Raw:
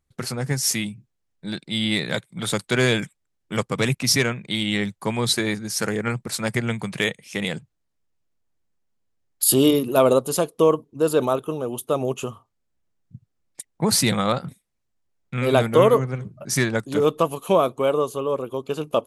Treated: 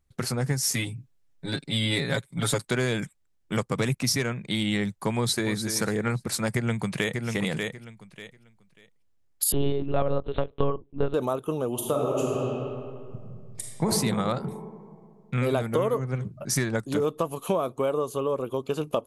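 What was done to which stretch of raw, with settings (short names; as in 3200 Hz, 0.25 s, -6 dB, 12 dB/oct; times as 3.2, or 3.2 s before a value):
0.73–2.65 comb 7.3 ms, depth 96%
5.17–5.59 echo throw 0.29 s, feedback 30%, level -11.5 dB
6.54–7.25 echo throw 0.59 s, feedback 20%, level -6.5 dB
9.52–11.14 monotone LPC vocoder at 8 kHz 140 Hz
11.73–13.88 reverb throw, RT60 2.1 s, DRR -2.5 dB
whole clip: dynamic EQ 3000 Hz, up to -4 dB, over -39 dBFS, Q 1.3; compressor 4:1, threshold -23 dBFS; low shelf 71 Hz +7 dB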